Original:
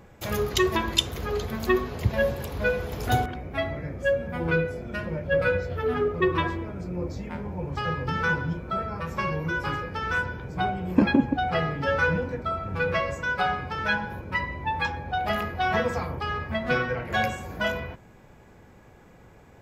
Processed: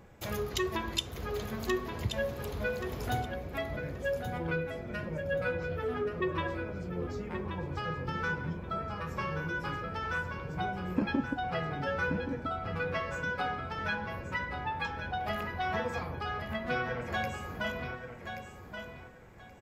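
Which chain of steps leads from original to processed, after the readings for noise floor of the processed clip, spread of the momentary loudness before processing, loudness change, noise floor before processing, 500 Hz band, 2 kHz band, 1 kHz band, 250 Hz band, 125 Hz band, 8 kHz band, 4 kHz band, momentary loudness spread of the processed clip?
-48 dBFS, 8 LU, -8.0 dB, -52 dBFS, -8.0 dB, -7.5 dB, -7.0 dB, -8.0 dB, -7.0 dB, n/a, -8.0 dB, 5 LU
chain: compressor 1.5:1, threshold -32 dBFS, peak gain reduction 7 dB; feedback echo 1.128 s, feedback 22%, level -8 dB; gain -4.5 dB

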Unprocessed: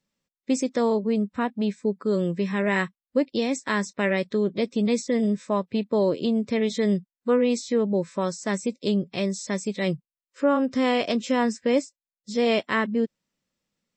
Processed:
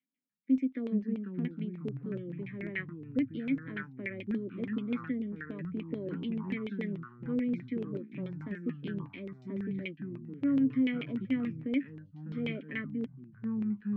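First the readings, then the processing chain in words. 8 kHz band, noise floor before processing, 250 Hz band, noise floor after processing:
under -40 dB, under -85 dBFS, -7.0 dB, -56 dBFS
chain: vowel filter i; low shelf 200 Hz -5.5 dB; LFO low-pass saw down 6.9 Hz 450–2800 Hz; echoes that change speed 0.294 s, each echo -4 st, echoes 3, each echo -6 dB

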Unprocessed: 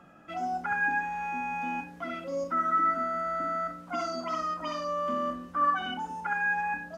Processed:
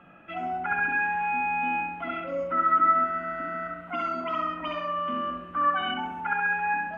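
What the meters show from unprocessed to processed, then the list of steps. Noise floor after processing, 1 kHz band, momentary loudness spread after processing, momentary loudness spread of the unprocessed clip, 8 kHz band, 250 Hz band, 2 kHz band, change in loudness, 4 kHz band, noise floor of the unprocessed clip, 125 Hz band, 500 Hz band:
-44 dBFS, +3.5 dB, 10 LU, 8 LU, n/a, +1.0 dB, +3.5 dB, +3.5 dB, +4.0 dB, -49 dBFS, +1.5 dB, +0.5 dB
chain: resonant high shelf 3900 Hz -12 dB, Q 3; analogue delay 67 ms, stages 1024, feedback 60%, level -3.5 dB

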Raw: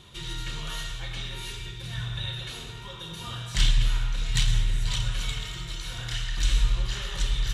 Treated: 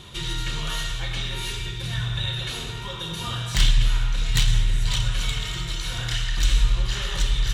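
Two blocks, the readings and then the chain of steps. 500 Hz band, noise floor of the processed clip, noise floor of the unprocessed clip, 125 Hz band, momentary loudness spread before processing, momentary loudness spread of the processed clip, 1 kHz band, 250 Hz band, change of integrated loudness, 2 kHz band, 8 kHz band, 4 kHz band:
+6.0 dB, -33 dBFS, -40 dBFS, +4.5 dB, 11 LU, 8 LU, +5.5 dB, +5.5 dB, +4.5 dB, +5.0 dB, +4.5 dB, +5.0 dB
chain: tracing distortion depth 0.028 ms; in parallel at -1 dB: compressor, threshold -33 dBFS, peak gain reduction 16 dB; on the sum: gain +2 dB

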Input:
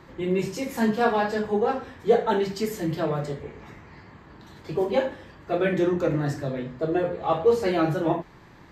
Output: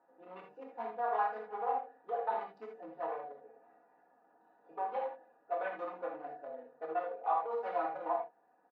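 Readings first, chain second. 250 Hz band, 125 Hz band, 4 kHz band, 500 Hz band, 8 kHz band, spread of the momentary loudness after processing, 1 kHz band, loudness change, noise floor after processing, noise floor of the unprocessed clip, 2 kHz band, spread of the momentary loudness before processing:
-27.5 dB, under -35 dB, under -25 dB, -15.0 dB, under -35 dB, 16 LU, -5.5 dB, -12.5 dB, -70 dBFS, -50 dBFS, -14.0 dB, 10 LU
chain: Wiener smoothing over 41 samples; bell 940 Hz +3.5 dB 0.96 oct; comb 4.1 ms, depth 94%; limiter -14 dBFS, peak gain reduction 11.5 dB; ladder band-pass 990 Hz, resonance 45%; non-linear reverb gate 0.1 s flat, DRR 1.5 dB

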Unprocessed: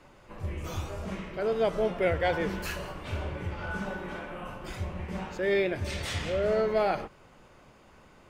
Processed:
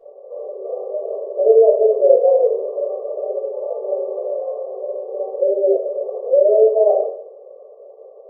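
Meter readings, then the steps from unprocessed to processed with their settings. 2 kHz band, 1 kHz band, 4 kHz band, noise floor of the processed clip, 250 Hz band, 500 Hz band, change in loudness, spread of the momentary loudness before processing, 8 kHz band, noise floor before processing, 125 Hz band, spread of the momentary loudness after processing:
under -40 dB, +4.0 dB, under -40 dB, -42 dBFS, n/a, +15.5 dB, +13.5 dB, 12 LU, under -30 dB, -57 dBFS, under -40 dB, 15 LU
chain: resonant low shelf 760 Hz +10.5 dB, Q 3; notch comb 930 Hz; in parallel at +3 dB: compressor, threshold -26 dBFS, peak gain reduction 18.5 dB; on the sum: FFT band-pass 370–1200 Hz; shoebox room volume 67 m³, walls mixed, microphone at 1.7 m; gain -11.5 dB

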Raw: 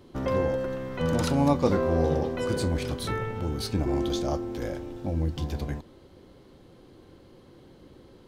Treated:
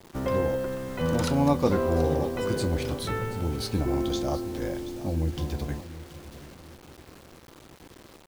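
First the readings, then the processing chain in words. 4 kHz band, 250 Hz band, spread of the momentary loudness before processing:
+0.5 dB, 0.0 dB, 10 LU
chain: feedback echo 0.73 s, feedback 35%, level -15 dB; bit-crush 8-bit

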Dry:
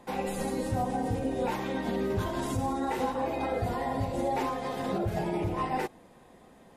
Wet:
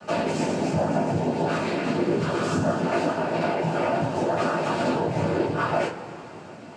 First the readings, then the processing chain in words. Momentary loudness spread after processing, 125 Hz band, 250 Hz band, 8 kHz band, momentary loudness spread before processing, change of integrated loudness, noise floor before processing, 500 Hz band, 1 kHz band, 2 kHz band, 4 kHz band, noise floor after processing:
2 LU, +6.0 dB, +6.5 dB, +4.5 dB, 2 LU, +6.5 dB, -56 dBFS, +7.5 dB, +4.5 dB, +9.0 dB, +7.5 dB, -41 dBFS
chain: compressor, threshold -34 dBFS, peak gain reduction 9 dB; noise vocoder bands 8; two-slope reverb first 0.22 s, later 3.1 s, from -22 dB, DRR -8.5 dB; gain +4.5 dB

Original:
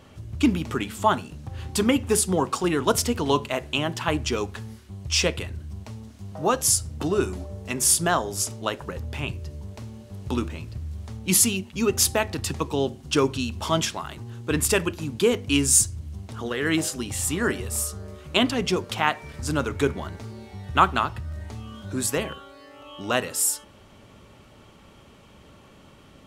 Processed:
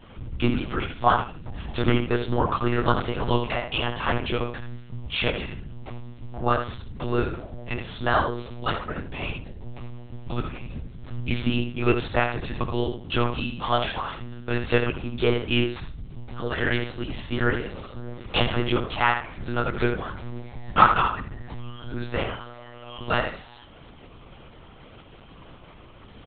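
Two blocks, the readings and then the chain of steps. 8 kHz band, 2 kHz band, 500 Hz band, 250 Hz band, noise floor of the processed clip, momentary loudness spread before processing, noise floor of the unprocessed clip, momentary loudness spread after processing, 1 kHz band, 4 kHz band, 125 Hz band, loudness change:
under -40 dB, +1.5 dB, -1.5 dB, -2.0 dB, -47 dBFS, 18 LU, -51 dBFS, 16 LU, +2.0 dB, -3.0 dB, +1.5 dB, -2.0 dB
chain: one-sided fold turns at -9 dBFS; dynamic EQ 1300 Hz, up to +5 dB, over -39 dBFS, Q 1.2; in parallel at -1 dB: compressor, threshold -34 dBFS, peak gain reduction 23.5 dB; on the sum: chorus voices 6, 0.7 Hz, delay 19 ms, depth 2.7 ms; on a send: feedback echo 74 ms, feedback 23%, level -7.5 dB; on the sum: monotone LPC vocoder at 8 kHz 120 Hz

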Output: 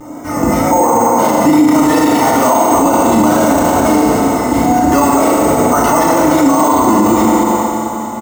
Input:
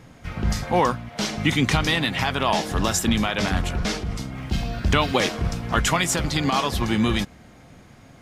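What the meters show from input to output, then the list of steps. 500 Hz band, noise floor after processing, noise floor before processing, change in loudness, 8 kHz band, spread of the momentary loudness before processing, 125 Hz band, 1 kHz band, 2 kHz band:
+15.5 dB, -21 dBFS, -49 dBFS, +12.0 dB, +10.5 dB, 8 LU, +2.5 dB, +15.5 dB, +4.0 dB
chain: HPF 270 Hz 12 dB/oct; bell 400 Hz -3 dB 1.5 oct; comb 3.3 ms, depth 52%; in parallel at -2 dB: negative-ratio compressor -26 dBFS; on the sum: polynomial smoothing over 65 samples; wow and flutter 88 cents; sample-and-hold 6×; on a send: echo with dull and thin repeats by turns 0.106 s, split 900 Hz, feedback 84%, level -11 dB; on the sum: FDN reverb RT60 2.5 s, low-frequency decay 0.7×, high-frequency decay 0.8×, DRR -5.5 dB; maximiser +13 dB; gain -1 dB

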